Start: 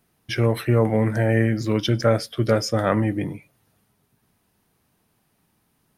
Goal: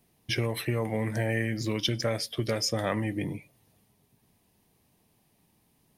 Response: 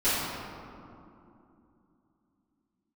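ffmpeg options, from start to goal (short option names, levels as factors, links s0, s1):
-filter_complex "[0:a]equalizer=f=1400:w=3.1:g=-11.5,acrossover=split=1200[s0][s1];[s0]acompressor=threshold=0.0447:ratio=6[s2];[s2][s1]amix=inputs=2:normalize=0"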